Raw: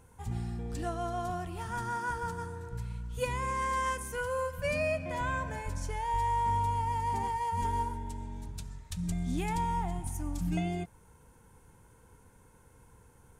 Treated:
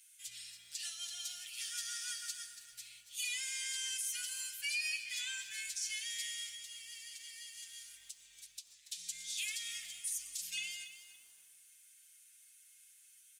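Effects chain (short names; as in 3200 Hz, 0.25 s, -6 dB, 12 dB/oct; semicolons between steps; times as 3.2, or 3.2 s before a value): inverse Chebyshev high-pass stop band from 1000 Hz, stop band 50 dB; comb 7 ms, depth 83%; dynamic EQ 5100 Hz, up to +6 dB, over -59 dBFS, Q 0.9; 6.46–8.89 compressor 20:1, threshold -52 dBFS, peak gain reduction 16 dB; limiter -34.5 dBFS, peak gain reduction 11.5 dB; lo-fi delay 0.283 s, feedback 35%, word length 11-bit, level -12 dB; gain +6 dB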